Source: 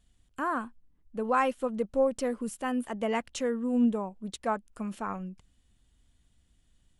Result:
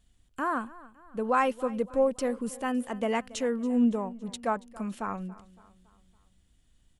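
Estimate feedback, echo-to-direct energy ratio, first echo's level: 49%, -19.0 dB, -20.0 dB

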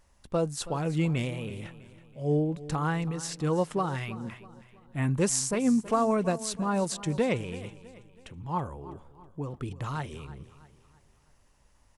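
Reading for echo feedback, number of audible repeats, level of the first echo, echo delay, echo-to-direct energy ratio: 42%, 3, -16.5 dB, 325 ms, -15.5 dB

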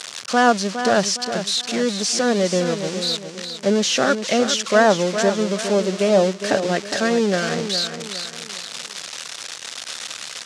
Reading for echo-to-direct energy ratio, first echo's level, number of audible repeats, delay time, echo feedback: -8.5 dB, -9.0 dB, 4, 411 ms, 38%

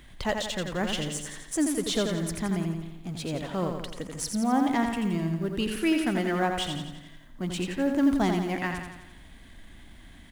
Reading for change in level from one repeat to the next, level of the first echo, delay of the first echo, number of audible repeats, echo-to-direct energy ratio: -5.5 dB, -5.5 dB, 86 ms, 6, -4.0 dB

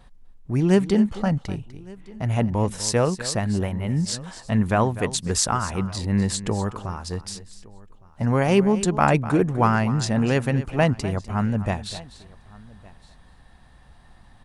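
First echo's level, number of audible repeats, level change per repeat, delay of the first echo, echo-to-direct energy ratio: -15.0 dB, 2, no regular repeats, 249 ms, -14.5 dB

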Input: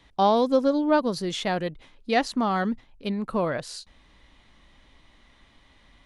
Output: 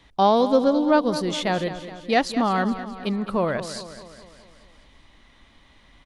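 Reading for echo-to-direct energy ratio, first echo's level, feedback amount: -11.0 dB, -12.5 dB, 56%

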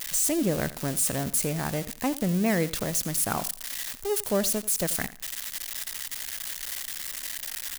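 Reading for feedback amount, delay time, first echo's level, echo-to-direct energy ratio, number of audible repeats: 21%, 86 ms, -17.0 dB, -17.0 dB, 2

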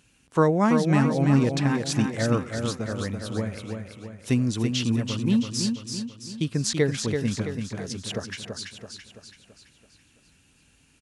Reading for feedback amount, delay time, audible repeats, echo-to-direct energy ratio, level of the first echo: 49%, 333 ms, 5, -4.5 dB, -5.5 dB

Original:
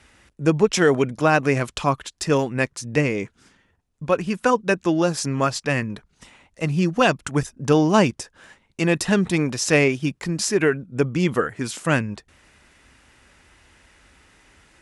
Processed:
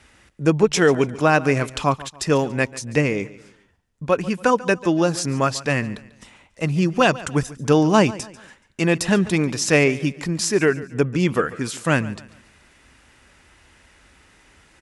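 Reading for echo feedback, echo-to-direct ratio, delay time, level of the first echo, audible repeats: 37%, -18.0 dB, 142 ms, -18.5 dB, 2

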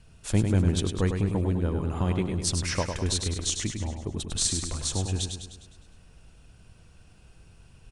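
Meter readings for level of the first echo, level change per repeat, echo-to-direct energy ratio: -6.0 dB, -5.5 dB, -4.5 dB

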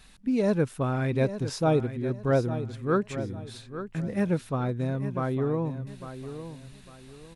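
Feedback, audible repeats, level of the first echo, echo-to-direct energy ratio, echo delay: 31%, 3, -11.5 dB, -11.0 dB, 852 ms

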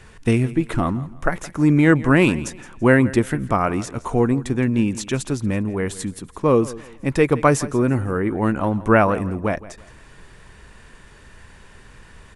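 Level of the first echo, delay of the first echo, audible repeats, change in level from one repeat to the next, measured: -18.0 dB, 167 ms, 2, -10.5 dB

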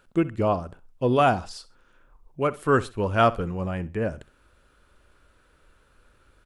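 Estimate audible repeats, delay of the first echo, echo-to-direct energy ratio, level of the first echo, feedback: 2, 64 ms, -18.0 dB, -18.5 dB, 27%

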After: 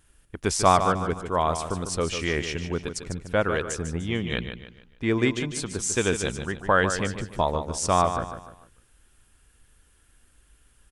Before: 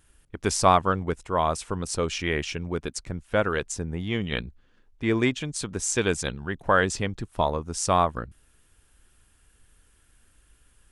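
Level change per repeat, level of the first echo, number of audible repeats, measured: -8.5 dB, -9.0 dB, 4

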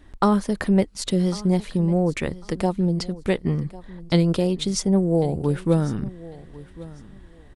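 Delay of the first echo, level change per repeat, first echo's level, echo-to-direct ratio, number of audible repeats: 1099 ms, -14.5 dB, -19.0 dB, -19.0 dB, 2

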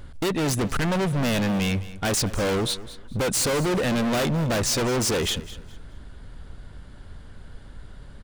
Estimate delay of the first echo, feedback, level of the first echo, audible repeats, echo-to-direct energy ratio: 210 ms, 26%, -16.5 dB, 2, -16.0 dB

